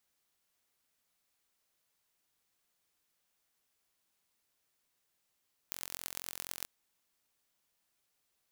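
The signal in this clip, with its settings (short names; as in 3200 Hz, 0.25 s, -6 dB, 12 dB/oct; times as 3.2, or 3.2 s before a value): pulse train 44.1/s, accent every 5, -9.5 dBFS 0.94 s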